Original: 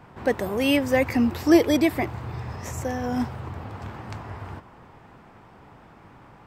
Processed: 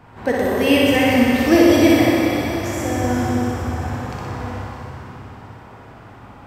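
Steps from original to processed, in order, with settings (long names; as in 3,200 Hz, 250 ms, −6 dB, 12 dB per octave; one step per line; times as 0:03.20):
flutter between parallel walls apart 10.5 metres, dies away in 1.2 s
dense smooth reverb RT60 4.4 s, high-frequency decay 0.9×, DRR −1.5 dB
level +1.5 dB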